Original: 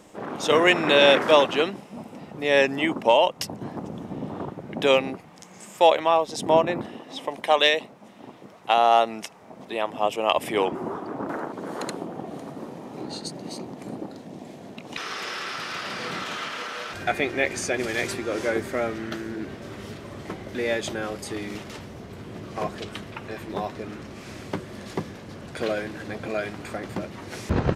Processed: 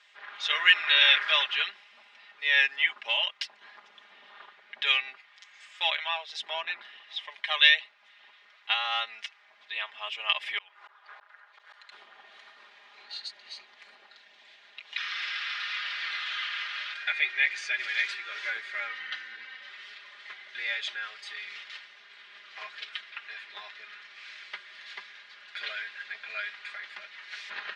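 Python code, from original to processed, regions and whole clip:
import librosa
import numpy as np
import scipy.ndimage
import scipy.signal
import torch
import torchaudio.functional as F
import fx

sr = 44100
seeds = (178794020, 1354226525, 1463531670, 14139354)

y = fx.chain(x, sr, fx.highpass(hz=490.0, slope=24),
    fx.gate_flip(shuts_db=-26.0, range_db=-38),
    fx.env_flatten(amount_pct=70), at=(10.58, 11.92))
y = fx.chain(y, sr, fx.highpass(hz=200.0, slope=12),
    fx.air_absorb(metres=60.0),
    fx.comb(ms=3.9, depth=0.91), at=(18.89, 19.7))
y = scipy.signal.sosfilt(scipy.signal.cheby1(2, 1.0, [1700.0, 3900.0], 'bandpass', fs=sr, output='sos'), y)
y = y + 0.87 * np.pad(y, (int(4.9 * sr / 1000.0), 0))[:len(y)]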